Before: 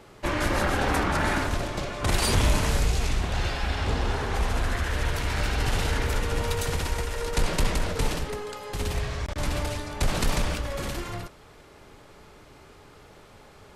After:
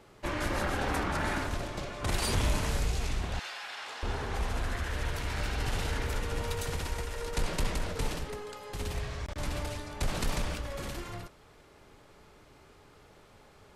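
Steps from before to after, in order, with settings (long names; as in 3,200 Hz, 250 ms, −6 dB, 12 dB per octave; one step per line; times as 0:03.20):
0:03.39–0:04.03: high-pass filter 940 Hz 12 dB per octave
level −6.5 dB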